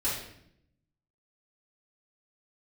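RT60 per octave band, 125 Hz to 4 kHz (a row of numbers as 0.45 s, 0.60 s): 1.2 s, 1.1 s, 0.80 s, 0.65 s, 0.65 s, 0.60 s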